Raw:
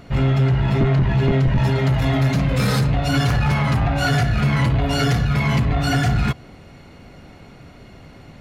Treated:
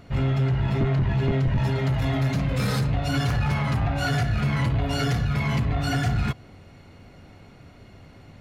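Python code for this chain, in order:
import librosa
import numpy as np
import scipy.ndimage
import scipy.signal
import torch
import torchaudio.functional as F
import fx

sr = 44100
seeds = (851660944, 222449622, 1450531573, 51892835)

y = fx.peak_eq(x, sr, hz=95.0, db=8.0, octaves=0.21)
y = F.gain(torch.from_numpy(y), -6.0).numpy()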